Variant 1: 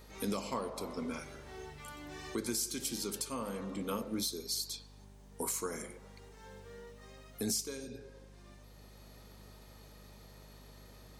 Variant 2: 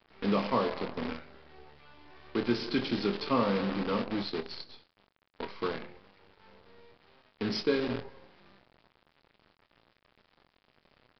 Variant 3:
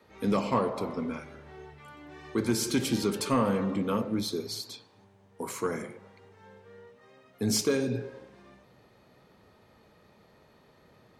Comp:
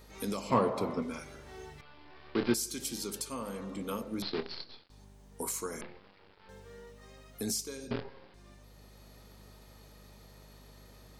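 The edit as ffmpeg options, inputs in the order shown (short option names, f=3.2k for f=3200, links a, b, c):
-filter_complex "[1:a]asplit=4[a][b][c][d];[0:a]asplit=6[e][f][g][h][i][j];[e]atrim=end=0.502[k];[2:a]atrim=start=0.498:end=1.022[l];[f]atrim=start=1.018:end=1.812[m];[a]atrim=start=1.808:end=2.542[n];[g]atrim=start=2.538:end=4.222[o];[b]atrim=start=4.218:end=4.902[p];[h]atrim=start=4.898:end=5.812[q];[c]atrim=start=5.808:end=6.492[r];[i]atrim=start=6.488:end=7.912[s];[d]atrim=start=7.908:end=8.342[t];[j]atrim=start=8.338[u];[k][l]acrossfade=d=0.004:c1=hsin:c2=hsin[v];[v][m]acrossfade=d=0.004:c1=hsin:c2=hsin[w];[w][n]acrossfade=d=0.004:c1=hsin:c2=hsin[x];[x][o]acrossfade=d=0.004:c1=hsin:c2=hsin[y];[y][p]acrossfade=d=0.004:c1=hsin:c2=hsin[z];[z][q]acrossfade=d=0.004:c1=hsin:c2=hsin[aa];[aa][r]acrossfade=d=0.004:c1=hsin:c2=hsin[ab];[ab][s]acrossfade=d=0.004:c1=hsin:c2=hsin[ac];[ac][t]acrossfade=d=0.004:c1=hsin:c2=hsin[ad];[ad][u]acrossfade=d=0.004:c1=hsin:c2=hsin"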